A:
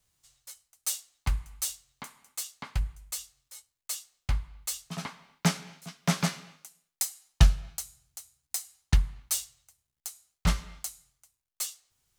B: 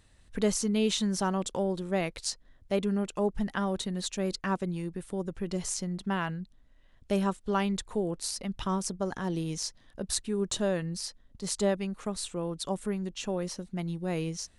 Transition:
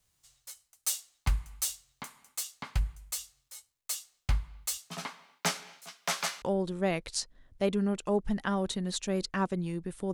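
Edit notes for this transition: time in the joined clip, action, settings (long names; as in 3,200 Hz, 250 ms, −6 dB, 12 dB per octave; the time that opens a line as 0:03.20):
A
0:04.77–0:06.42: high-pass filter 220 Hz → 730 Hz
0:06.42: continue with B from 0:01.52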